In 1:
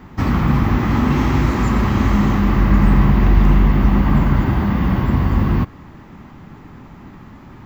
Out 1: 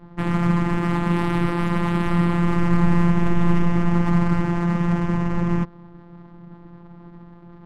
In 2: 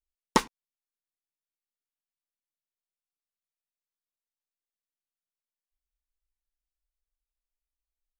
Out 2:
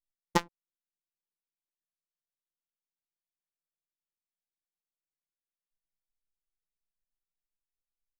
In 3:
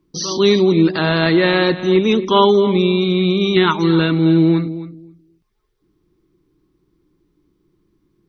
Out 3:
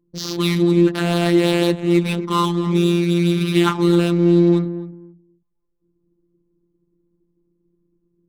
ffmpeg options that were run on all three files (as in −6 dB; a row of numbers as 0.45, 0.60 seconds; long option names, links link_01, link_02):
-af "afftfilt=real='hypot(re,im)*cos(PI*b)':imag='0':win_size=1024:overlap=0.75,adynamicsmooth=sensitivity=3.5:basefreq=630"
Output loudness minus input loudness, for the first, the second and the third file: −5.0, −4.0, −2.5 LU